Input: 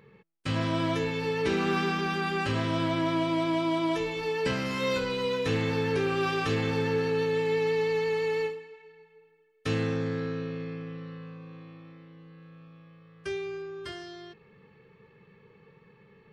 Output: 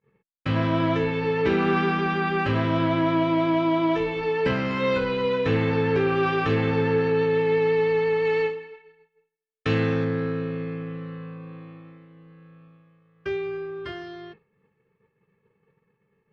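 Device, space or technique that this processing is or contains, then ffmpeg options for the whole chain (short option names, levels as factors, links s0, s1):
hearing-loss simulation: -filter_complex "[0:a]asettb=1/sr,asplit=3[s0][s1][s2];[s0]atrim=end=8.254[s3];[s1]atrim=start=8.25:end=10.05,asetpts=PTS-STARTPTS,afade=t=in:d=0.004:c=qsin,afade=t=out:st=1.796:d=0.004:c=qsin,highshelf=f=2100:g=6[s4];[s2]atrim=start=10.046[s5];[s3][s4]acrossfade=d=0.004:c1=hsin:c2=qsin[s6];[s6][s5]acrossfade=d=0.004:c1=qsin:c2=hsin,lowpass=2600,agate=range=0.0224:threshold=0.00562:ratio=3:detection=peak,volume=1.88"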